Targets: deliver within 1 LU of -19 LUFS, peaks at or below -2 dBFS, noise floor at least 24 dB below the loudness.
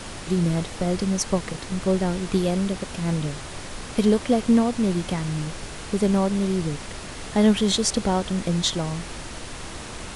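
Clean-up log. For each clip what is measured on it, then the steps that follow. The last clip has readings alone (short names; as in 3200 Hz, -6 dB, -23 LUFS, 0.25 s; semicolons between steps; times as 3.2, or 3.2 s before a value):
noise floor -37 dBFS; noise floor target -48 dBFS; loudness -23.5 LUFS; peak -8.0 dBFS; loudness target -19.0 LUFS
-> noise print and reduce 11 dB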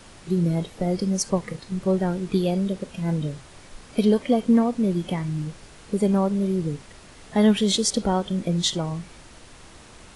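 noise floor -47 dBFS; noise floor target -48 dBFS
-> noise print and reduce 6 dB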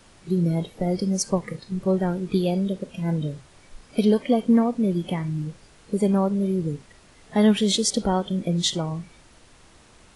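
noise floor -53 dBFS; loudness -24.0 LUFS; peak -8.5 dBFS; loudness target -19.0 LUFS
-> gain +5 dB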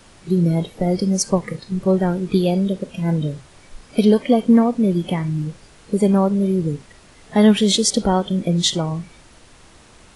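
loudness -19.0 LUFS; peak -3.5 dBFS; noise floor -48 dBFS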